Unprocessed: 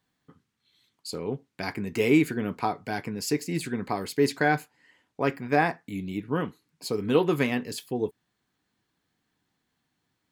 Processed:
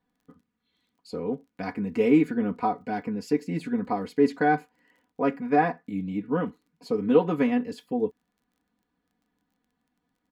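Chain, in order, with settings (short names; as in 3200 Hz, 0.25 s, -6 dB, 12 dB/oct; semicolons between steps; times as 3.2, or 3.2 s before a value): LPF 1000 Hz 6 dB/oct; comb 4.1 ms, depth 86%; crackle 24/s -55 dBFS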